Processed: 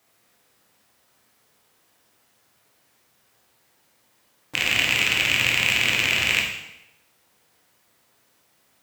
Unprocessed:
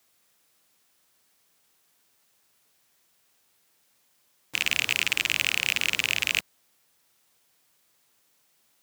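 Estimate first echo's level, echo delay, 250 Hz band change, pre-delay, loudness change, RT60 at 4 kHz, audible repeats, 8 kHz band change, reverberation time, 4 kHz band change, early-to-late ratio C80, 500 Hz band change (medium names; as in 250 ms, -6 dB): no echo, no echo, +10.0 dB, 6 ms, +5.0 dB, 0.80 s, no echo, +2.0 dB, 0.85 s, +4.5 dB, 6.0 dB, +10.0 dB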